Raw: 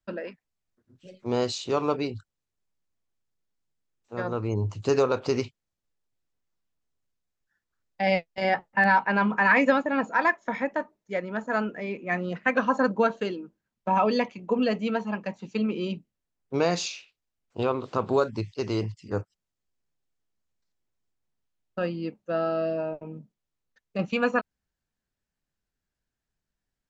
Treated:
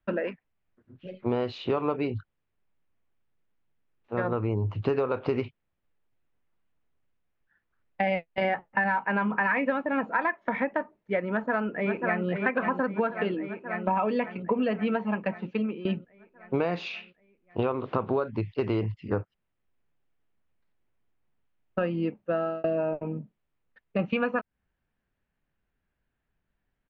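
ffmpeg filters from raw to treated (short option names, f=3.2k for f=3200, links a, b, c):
-filter_complex "[0:a]asplit=2[a][b];[b]afade=t=in:st=11.31:d=0.01,afade=t=out:st=12.26:d=0.01,aecho=0:1:540|1080|1620|2160|2700|3240|3780|4320|4860|5400:0.530884|0.345075|0.224299|0.145794|0.0947662|0.061598|0.0400387|0.0260252|0.0169164|0.0109956[c];[a][c]amix=inputs=2:normalize=0,asplit=3[d][e][f];[d]atrim=end=15.85,asetpts=PTS-STARTPTS,afade=t=out:st=15.27:d=0.58:silence=0.1[g];[e]atrim=start=15.85:end=22.64,asetpts=PTS-STARTPTS,afade=t=in:d=0.004:c=hsin:silence=0.1,afade=t=out:st=6.24:d=0.55:c=qsin[h];[f]atrim=start=22.64,asetpts=PTS-STARTPTS,afade=t=in:d=0.004:c=hsin[i];[g][h][i]concat=n=3:v=0:a=1,lowpass=f=2.9k:w=0.5412,lowpass=f=2.9k:w=1.3066,acompressor=threshold=-30dB:ratio=6,volume=6.5dB"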